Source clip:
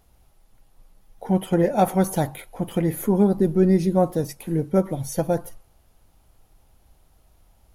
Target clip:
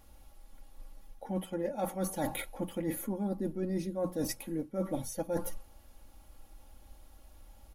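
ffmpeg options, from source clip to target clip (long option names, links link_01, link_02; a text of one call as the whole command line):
ffmpeg -i in.wav -af "bandreject=frequency=60:width_type=h:width=6,bandreject=frequency=120:width_type=h:width=6,bandreject=frequency=180:width_type=h:width=6,aecho=1:1:3.6:0.66,areverse,acompressor=threshold=-30dB:ratio=20,areverse" out.wav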